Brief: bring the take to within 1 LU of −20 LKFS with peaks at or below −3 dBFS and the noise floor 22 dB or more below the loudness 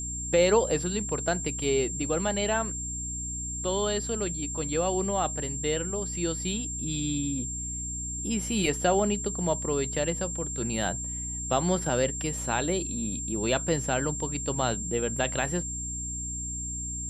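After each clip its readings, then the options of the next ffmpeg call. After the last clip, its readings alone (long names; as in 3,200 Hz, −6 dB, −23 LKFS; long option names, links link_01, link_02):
mains hum 60 Hz; hum harmonics up to 300 Hz; level of the hum −36 dBFS; interfering tone 7,400 Hz; level of the tone −33 dBFS; integrated loudness −28.5 LKFS; sample peak −10.0 dBFS; target loudness −20.0 LKFS
→ -af "bandreject=frequency=60:width_type=h:width=4,bandreject=frequency=120:width_type=h:width=4,bandreject=frequency=180:width_type=h:width=4,bandreject=frequency=240:width_type=h:width=4,bandreject=frequency=300:width_type=h:width=4"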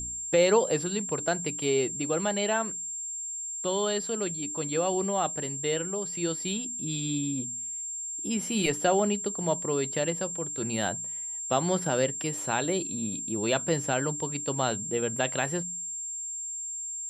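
mains hum none found; interfering tone 7,400 Hz; level of the tone −33 dBFS
→ -af "bandreject=frequency=7400:width=30"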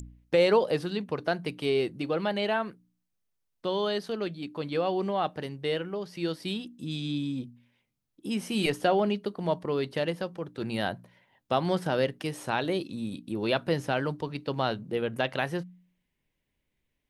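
interfering tone none found; integrated loudness −30.0 LKFS; sample peak −11.0 dBFS; target loudness −20.0 LKFS
→ -af "volume=10dB,alimiter=limit=-3dB:level=0:latency=1"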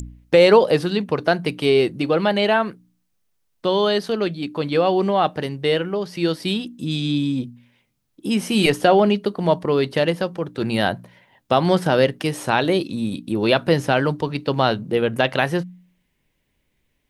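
integrated loudness −20.0 LKFS; sample peak −3.0 dBFS; background noise floor −70 dBFS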